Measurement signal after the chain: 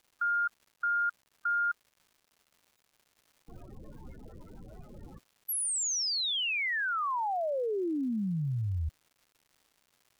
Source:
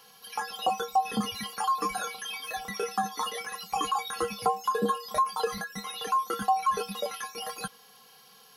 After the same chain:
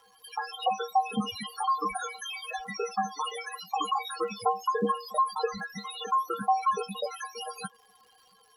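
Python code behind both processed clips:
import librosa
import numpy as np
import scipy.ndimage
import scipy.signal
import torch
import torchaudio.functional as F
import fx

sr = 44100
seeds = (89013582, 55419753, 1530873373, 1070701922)

y = fx.spec_topn(x, sr, count=16)
y = fx.dmg_crackle(y, sr, seeds[0], per_s=310.0, level_db=-53.0)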